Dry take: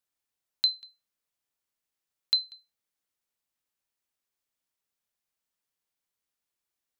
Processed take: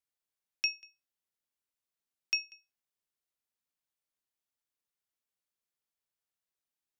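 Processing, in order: ring modulator 1.5 kHz; trim -3 dB

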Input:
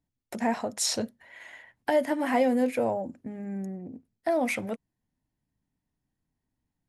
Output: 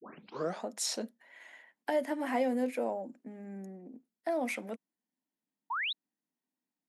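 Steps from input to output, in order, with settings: tape start-up on the opening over 0.65 s; painted sound rise, 5.70–5.93 s, 860–4100 Hz -27 dBFS; steep high-pass 200 Hz 36 dB/octave; trim -6.5 dB

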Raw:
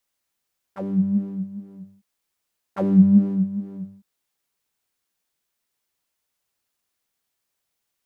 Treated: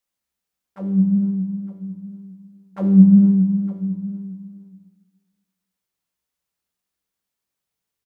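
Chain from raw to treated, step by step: delay 910 ms -17 dB; on a send at -7 dB: reverberation RT60 2.1 s, pre-delay 3 ms; on the sum: trim -5 dB

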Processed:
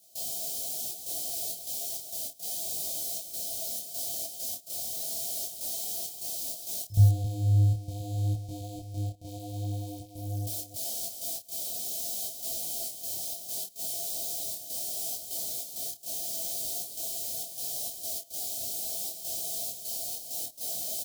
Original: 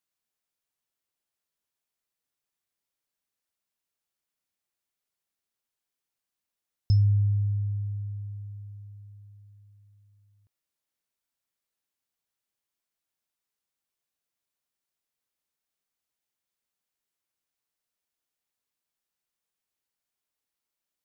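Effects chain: jump at every zero crossing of -31.5 dBFS; high-pass 60 Hz; treble shelf 3.1 kHz +6.5 dB; trance gate ".xxxxx.xxx.xx.x" 99 bpm -24 dB; elliptic band-stop 770–2300 Hz, stop band 40 dB; high-order bell 1.8 kHz -15 dB; small resonant body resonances 670/1500/3100 Hz, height 13 dB, ringing for 55 ms; on a send: loudspeakers at several distances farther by 10 m -7 dB, 93 m -7 dB; on the sum: detune thickener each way 25 cents; trim +2.5 dB

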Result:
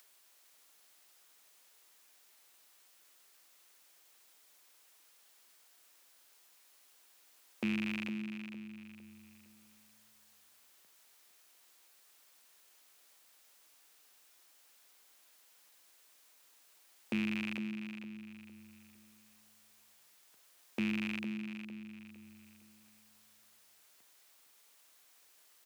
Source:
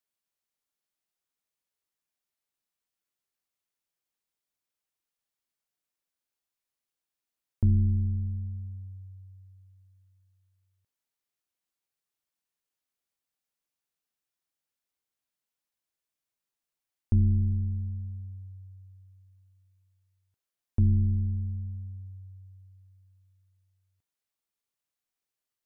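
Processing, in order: rattle on loud lows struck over -23 dBFS, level -33 dBFS; Bessel high-pass 300 Hz, order 8; bass shelf 380 Hz -5 dB; upward compressor, threshold -57 dBFS; on a send: feedback delay 458 ms, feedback 37%, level -9.5 dB; on the sum: trim +7 dB

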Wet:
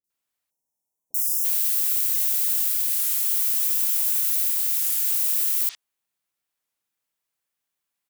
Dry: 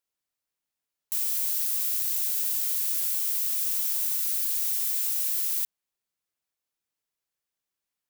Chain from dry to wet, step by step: bass shelf 120 Hz -6.5 dB; three bands offset in time lows, highs, mids 40/100 ms, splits 420/5200 Hz; spectral selection erased 0.50–1.44 s, 1–5.2 kHz; warped record 33 1/3 rpm, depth 160 cents; trim +5 dB

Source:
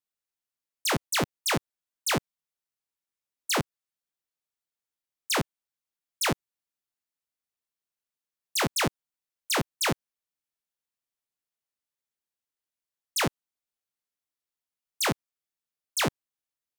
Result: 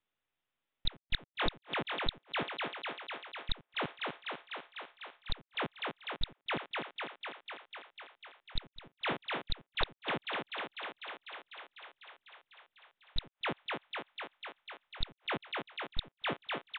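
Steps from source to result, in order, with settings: partial rectifier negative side -7 dB; resampled via 8 kHz; on a send: thinning echo 249 ms, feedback 78%, high-pass 270 Hz, level -16 dB; on the sum: inverted gate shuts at -28 dBFS, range -38 dB; trim +11 dB

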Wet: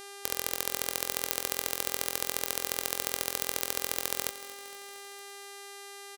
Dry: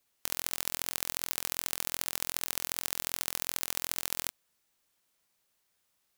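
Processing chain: high-pass 57 Hz; peaking EQ 490 Hz +10 dB 0.78 oct; mains buzz 400 Hz, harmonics 30, -47 dBFS -3 dB/octave; on a send: feedback delay 231 ms, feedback 59%, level -16 dB; on the sum: trim +1 dB

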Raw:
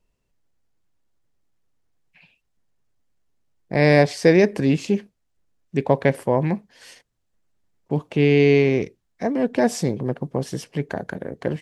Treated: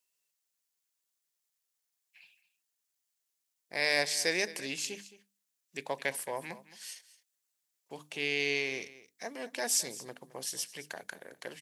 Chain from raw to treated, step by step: differentiator; hum notches 50/100/150/200/250/300 Hz; on a send: delay 217 ms -17 dB; on the sum: trim +4.5 dB

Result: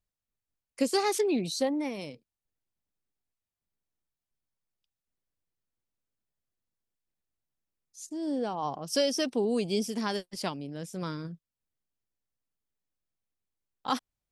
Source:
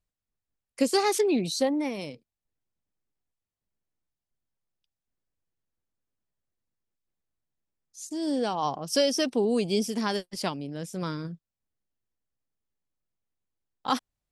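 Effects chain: 8.06–8.72 s: treble shelf 2 kHz -9.5 dB; trim -3 dB

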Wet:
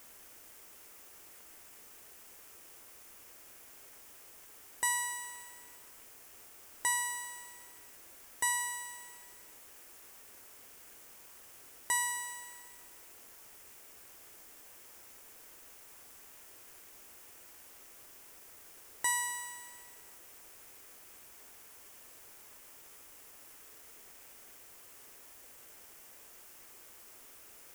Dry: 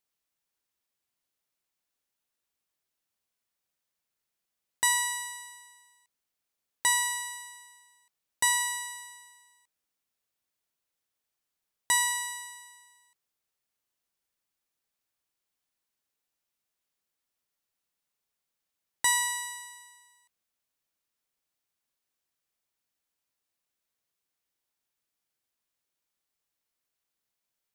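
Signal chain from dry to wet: in parallel at -10.5 dB: word length cut 6-bit, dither triangular; on the sum: fifteen-band graphic EQ 160 Hz -8 dB, 400 Hz +4 dB, 4 kHz -9 dB; trim -7.5 dB

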